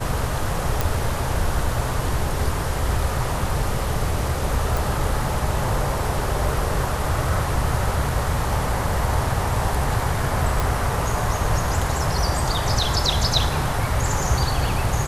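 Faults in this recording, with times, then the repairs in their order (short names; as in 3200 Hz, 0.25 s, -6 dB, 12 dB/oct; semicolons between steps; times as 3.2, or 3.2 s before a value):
0.81 pop
4.77 pop
10.6 pop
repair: de-click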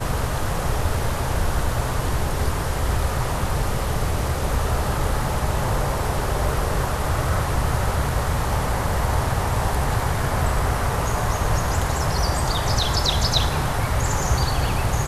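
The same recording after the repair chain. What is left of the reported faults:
none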